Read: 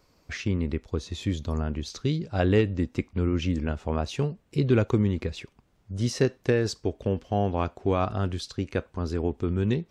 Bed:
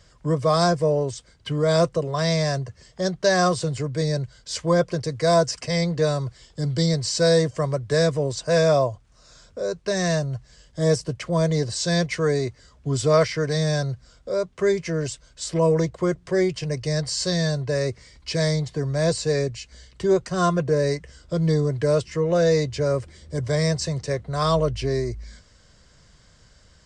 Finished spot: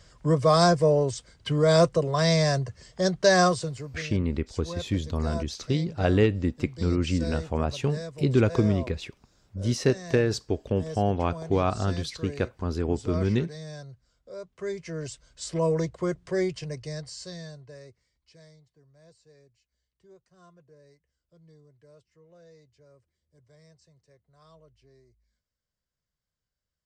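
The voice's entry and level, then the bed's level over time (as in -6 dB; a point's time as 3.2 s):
3.65 s, +0.5 dB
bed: 3.41 s 0 dB
4.11 s -17.5 dB
14.18 s -17.5 dB
15.3 s -5.5 dB
16.49 s -5.5 dB
18.72 s -35 dB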